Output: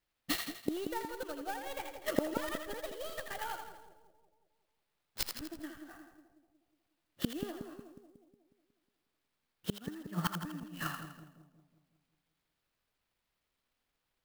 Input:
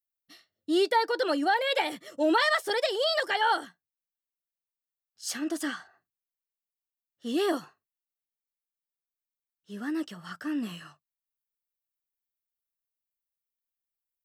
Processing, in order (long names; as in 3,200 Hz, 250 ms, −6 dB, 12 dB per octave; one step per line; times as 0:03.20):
stylus tracing distortion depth 0.15 ms
Butterworth low-pass 5,300 Hz 48 dB per octave
low-shelf EQ 240 Hz +3 dB
transient designer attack +7 dB, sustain −6 dB
gate with flip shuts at −33 dBFS, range −34 dB
echo with a time of its own for lows and highs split 690 Hz, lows 182 ms, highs 82 ms, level −6 dB
converter with an unsteady clock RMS 0.037 ms
level +15.5 dB